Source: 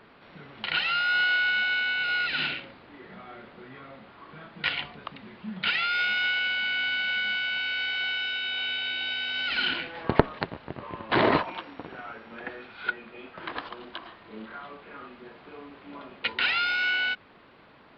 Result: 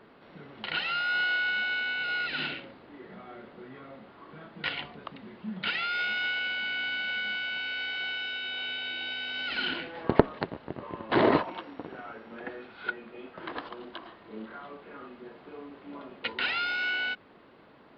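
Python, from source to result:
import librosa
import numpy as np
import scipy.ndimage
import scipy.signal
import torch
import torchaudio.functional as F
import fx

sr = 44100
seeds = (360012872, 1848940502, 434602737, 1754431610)

y = fx.peak_eq(x, sr, hz=350.0, db=6.5, octaves=2.5)
y = fx.notch(y, sr, hz=2400.0, q=26.0)
y = y * 10.0 ** (-5.0 / 20.0)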